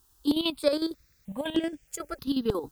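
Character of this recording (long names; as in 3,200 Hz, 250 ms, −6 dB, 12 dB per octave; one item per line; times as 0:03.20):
chopped level 11 Hz, depth 65%, duty 50%
a quantiser's noise floor 12 bits, dither triangular
notches that jump at a steady rate 3.2 Hz 590–4,000 Hz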